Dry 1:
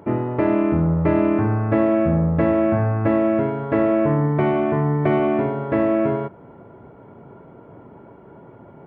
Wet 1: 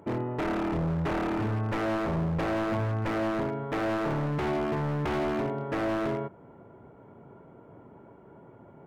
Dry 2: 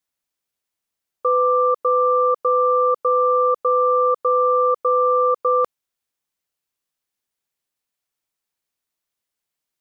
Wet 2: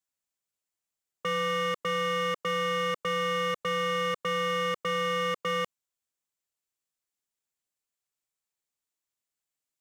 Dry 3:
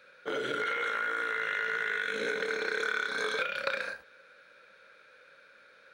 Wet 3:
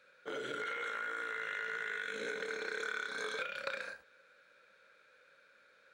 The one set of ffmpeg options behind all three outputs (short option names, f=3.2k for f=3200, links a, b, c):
-af "equalizer=f=7.4k:w=3.5:g=7,aeval=exprs='0.158*(abs(mod(val(0)/0.158+3,4)-2)-1)':c=same,volume=-7.5dB"